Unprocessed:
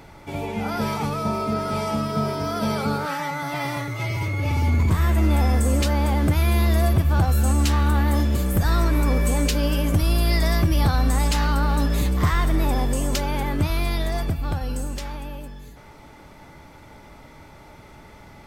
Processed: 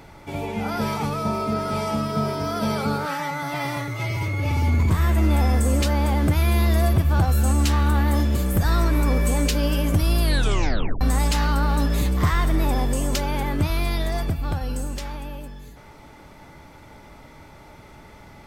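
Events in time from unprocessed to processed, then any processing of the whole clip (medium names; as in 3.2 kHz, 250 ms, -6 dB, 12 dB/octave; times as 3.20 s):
10.22 s: tape stop 0.79 s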